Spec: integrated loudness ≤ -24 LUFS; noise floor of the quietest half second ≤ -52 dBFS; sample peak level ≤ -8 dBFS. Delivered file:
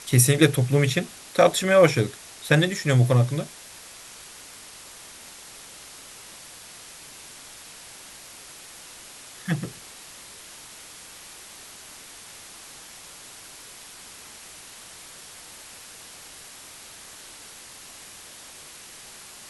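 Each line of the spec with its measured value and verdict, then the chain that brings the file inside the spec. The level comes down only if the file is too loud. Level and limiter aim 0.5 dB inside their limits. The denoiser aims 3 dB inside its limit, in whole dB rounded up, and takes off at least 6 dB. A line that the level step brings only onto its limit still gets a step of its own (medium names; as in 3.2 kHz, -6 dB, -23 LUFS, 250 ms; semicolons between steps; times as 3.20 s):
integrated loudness -21.5 LUFS: fail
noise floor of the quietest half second -44 dBFS: fail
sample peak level -2.5 dBFS: fail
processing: noise reduction 8 dB, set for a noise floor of -44 dBFS; trim -3 dB; peak limiter -8.5 dBFS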